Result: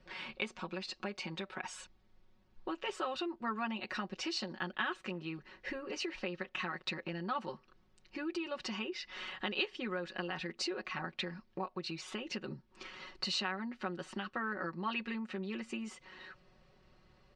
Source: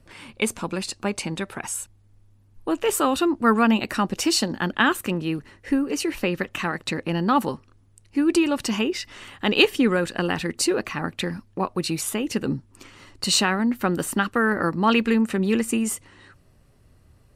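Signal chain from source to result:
low-pass filter 5,000 Hz 24 dB per octave
comb filter 5.4 ms, depth 85%
downward compressor 3 to 1, threshold −34 dBFS, peak gain reduction 18.5 dB
low-shelf EQ 350 Hz −9.5 dB
level −2.5 dB

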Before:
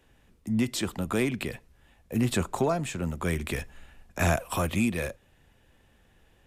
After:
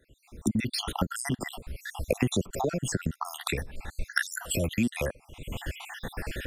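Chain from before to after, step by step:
time-frequency cells dropped at random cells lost 65%
camcorder AGC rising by 53 dB per second

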